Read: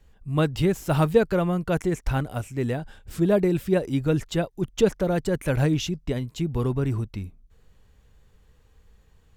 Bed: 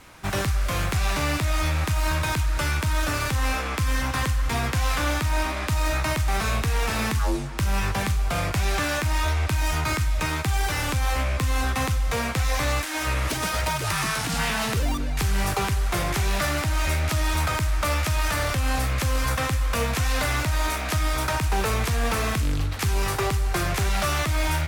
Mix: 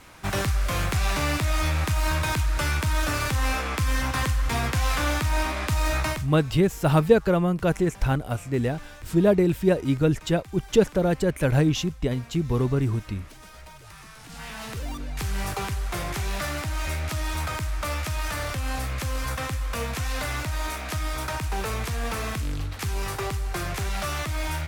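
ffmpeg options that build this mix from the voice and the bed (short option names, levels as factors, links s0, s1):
-filter_complex "[0:a]adelay=5950,volume=1.19[s0];[1:a]volume=5.96,afade=t=out:st=6.05:d=0.24:silence=0.0944061,afade=t=in:st=14.16:d=1.13:silence=0.158489[s1];[s0][s1]amix=inputs=2:normalize=0"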